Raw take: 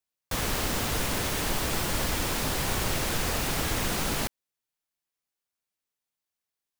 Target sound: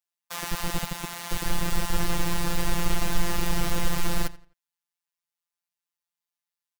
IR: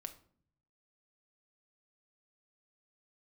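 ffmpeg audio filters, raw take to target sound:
-filter_complex "[0:a]asplit=3[a][b][c];[a]afade=t=out:st=0.85:d=0.02[d];[b]aeval=exprs='val(0)*sin(2*PI*110*n/s)':c=same,afade=t=in:st=0.85:d=0.02,afade=t=out:st=1.28:d=0.02[e];[c]afade=t=in:st=1.28:d=0.02[f];[d][e][f]amix=inputs=3:normalize=0,asubboost=boost=6.5:cutoff=130,acrossover=split=130[g][h];[g]acrusher=bits=3:mix=0:aa=0.000001[i];[h]lowshelf=f=600:t=q:w=1.5:g=-8.5[j];[i][j]amix=inputs=2:normalize=0,afftfilt=real='hypot(re,im)*cos(PI*b)':imag='0':win_size=1024:overlap=0.75,asplit=2[k][l];[l]adelay=86,lowpass=f=4.9k:p=1,volume=-18dB,asplit=2[m][n];[n]adelay=86,lowpass=f=4.9k:p=1,volume=0.3,asplit=2[o][p];[p]adelay=86,lowpass=f=4.9k:p=1,volume=0.3[q];[m][o][q]amix=inputs=3:normalize=0[r];[k][r]amix=inputs=2:normalize=0"

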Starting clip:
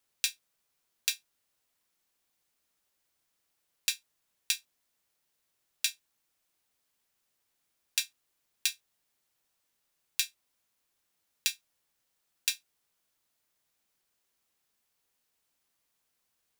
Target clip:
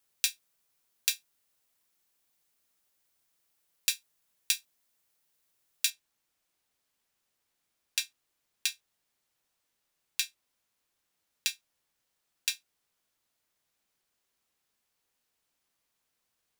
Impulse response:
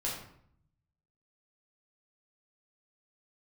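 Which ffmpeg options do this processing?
-af "asetnsamples=n=441:p=0,asendcmd='5.9 highshelf g -3.5',highshelf=f=8.2k:g=5"

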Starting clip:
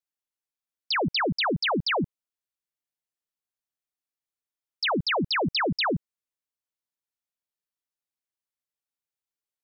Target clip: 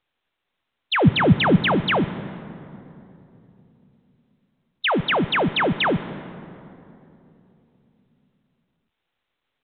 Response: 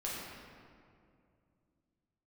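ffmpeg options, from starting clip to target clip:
-filter_complex "[0:a]asettb=1/sr,asplit=3[a][b][c];[a]atrim=end=1.014[d];[b]atrim=start=1.01:end=1.56,asetpts=PTS-STARTPTS,afade=t=in:d=0.004:c=qsin,afade=t=out:st=0.546:d=0.004:c=qsin,equalizer=f=110:w=0.7:g=15[e];[c]atrim=start=1.556[f];[d][e]acrossfade=d=0.004:c1=hsin:c2=qsin[g];[g][f]acrossfade=d=0.004:c1=qsin:c2=hsin,asplit=2[h][i];[1:a]atrim=start_sample=2205,asetrate=33075,aresample=44100[j];[i][j]afir=irnorm=-1:irlink=0,volume=-15.5dB[k];[h][k]amix=inputs=2:normalize=0,volume=4dB" -ar 8000 -c:a pcm_mulaw

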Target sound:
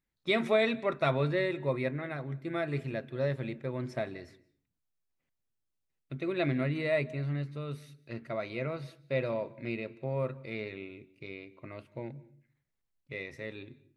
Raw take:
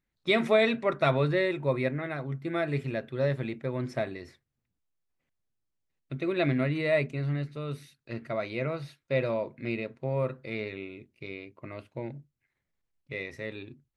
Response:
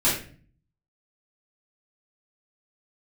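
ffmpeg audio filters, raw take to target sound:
-filter_complex "[0:a]asplit=2[a][b];[1:a]atrim=start_sample=2205,afade=t=out:st=0.39:d=0.01,atrim=end_sample=17640,adelay=144[c];[b][c]afir=irnorm=-1:irlink=0,volume=-36dB[d];[a][d]amix=inputs=2:normalize=0,volume=-3.5dB"

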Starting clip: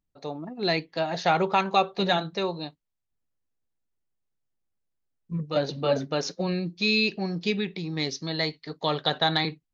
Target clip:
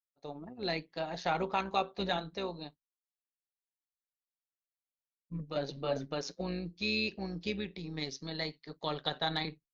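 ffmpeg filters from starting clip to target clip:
-af "tremolo=f=130:d=0.519,agate=range=-33dB:threshold=-44dB:ratio=3:detection=peak,volume=-7dB"

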